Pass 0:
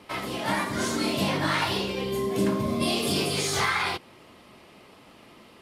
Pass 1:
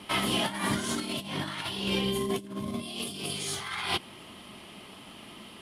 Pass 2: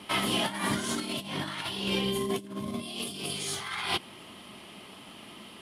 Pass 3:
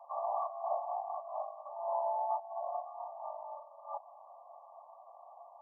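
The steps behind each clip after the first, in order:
thirty-one-band EQ 200 Hz +5 dB, 500 Hz -6 dB, 3150 Hz +9 dB, 10000 Hz +10 dB; negative-ratio compressor -29 dBFS, ratio -0.5; gain -2 dB
low shelf 64 Hz -8.5 dB
frequency shift +480 Hz; brick-wall FIR low-pass 1200 Hz; gain -3 dB

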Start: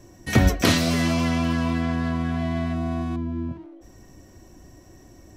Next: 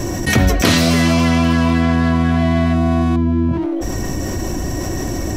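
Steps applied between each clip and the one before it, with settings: fast leveller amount 70%; gain +2 dB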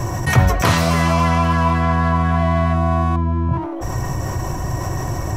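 graphic EQ 125/250/1000/4000 Hz +11/-9/+11/-4 dB; gain -4 dB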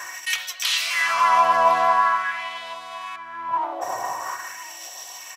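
LFO high-pass sine 0.45 Hz 700–3400 Hz; echo 1.057 s -19.5 dB; gain -2 dB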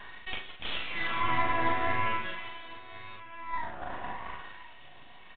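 half-wave rectifier; doubler 40 ms -4 dB; gain -7.5 dB; µ-law 64 kbps 8000 Hz

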